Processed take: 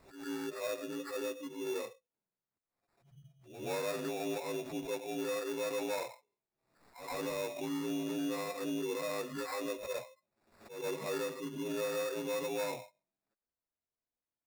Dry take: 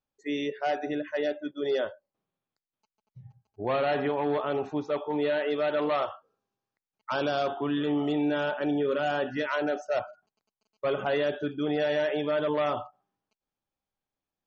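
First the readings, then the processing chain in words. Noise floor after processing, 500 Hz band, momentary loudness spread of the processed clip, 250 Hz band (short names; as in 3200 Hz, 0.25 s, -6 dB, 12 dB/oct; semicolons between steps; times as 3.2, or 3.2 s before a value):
under -85 dBFS, -9.5 dB, 7 LU, -8.5 dB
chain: inharmonic rescaling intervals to 83%; sample-rate reducer 3100 Hz, jitter 0%; on a send: reverse echo 0.123 s -22.5 dB; on the sum: backwards sustainer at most 93 dB/s; gain -8.5 dB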